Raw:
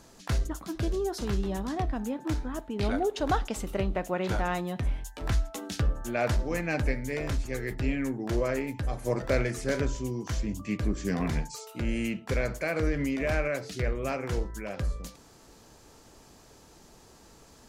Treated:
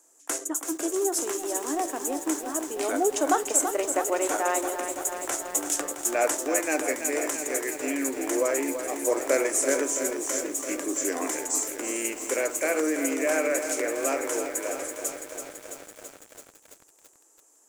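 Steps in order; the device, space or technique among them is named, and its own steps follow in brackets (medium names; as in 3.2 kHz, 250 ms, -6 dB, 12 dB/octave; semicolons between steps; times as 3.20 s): budget condenser microphone (high-pass 90 Hz 24 dB/octave; resonant high shelf 5.7 kHz +10.5 dB, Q 3); gate -37 dBFS, range -16 dB; elliptic high-pass 290 Hz, stop band 40 dB; bit-crushed delay 333 ms, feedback 80%, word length 8-bit, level -8 dB; trim +4.5 dB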